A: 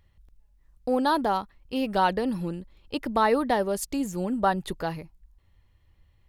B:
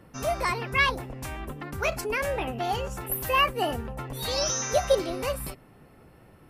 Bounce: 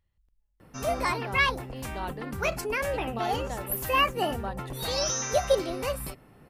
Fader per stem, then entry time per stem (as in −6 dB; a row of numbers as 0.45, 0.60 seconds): −13.5, −1.0 decibels; 0.00, 0.60 seconds